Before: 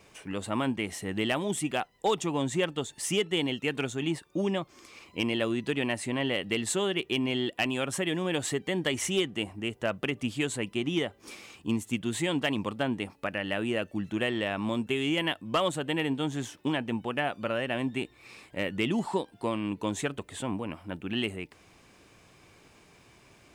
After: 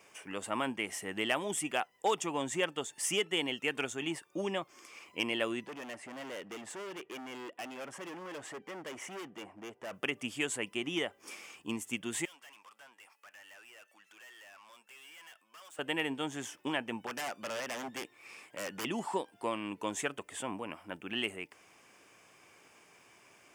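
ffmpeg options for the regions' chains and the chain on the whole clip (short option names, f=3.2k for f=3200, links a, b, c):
-filter_complex "[0:a]asettb=1/sr,asplit=3[a][b][c];[a]atrim=end=5.664[d];[b]atrim=start=5.66:end=9.93,asetpts=PTS-STARTPTS,afade=t=in:d=0.004:c=qsin,afade=t=out:st=4.266:d=0.004:c=qsin,lowpass=f=1.3k:p=1,volume=35.5dB,asoftclip=hard,volume=-35.5dB,lowshelf=f=110:g=-8[e];[c]atrim=start=9.926[f];[d][e]acrossfade=d=0.004:c1=hsin:c2=qsin[g];[g][f]acrossfade=d=0.004:c1=qsin:c2=hsin,asettb=1/sr,asplit=3[h][i][j];[h]atrim=end=12.254[k];[i]atrim=start=12.25:end=15.79,asetpts=PTS-STARTPTS,afade=t=in:d=0.004:c=qsin,afade=t=out:st=3.536:d=0.004:c=qsin,acompressor=threshold=-42dB:ratio=1.5:attack=3.2:release=140:knee=1:detection=peak,highpass=1.1k,aeval=exprs='(tanh(316*val(0)+0.35)-tanh(0.35))/316':c=same[l];[j]atrim=start=15.786[m];[k][l]acrossfade=d=0.004:c1=hsin:c2=qsin[n];[n][m]acrossfade=d=0.004:c1=qsin:c2=hsin,asettb=1/sr,asplit=3[o][p][q];[o]atrim=end=17.064[r];[p]atrim=start=17.06:end=18.85,asetpts=PTS-STARTPTS,afade=t=in:d=0.004:c=qsin,afade=t=out:st=1.786:d=0.004:c=qsin,highpass=100,aeval=exprs='0.0335*(abs(mod(val(0)/0.0335+3,4)-2)-1)':c=same[s];[q]atrim=start=18.846[t];[r][s]acrossfade=d=0.004:c1=hsin:c2=qsin[u];[u][t]acrossfade=d=0.004:c1=qsin:c2=hsin,highpass=f=630:p=1,equalizer=f=4k:t=o:w=0.3:g=-11.5"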